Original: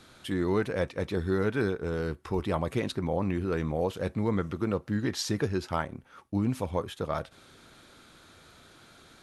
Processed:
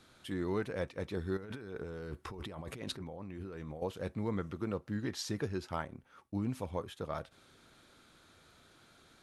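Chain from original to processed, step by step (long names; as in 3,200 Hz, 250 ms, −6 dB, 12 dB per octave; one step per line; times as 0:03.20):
0:01.37–0:03.82: compressor whose output falls as the input rises −36 dBFS, ratio −1
level −7.5 dB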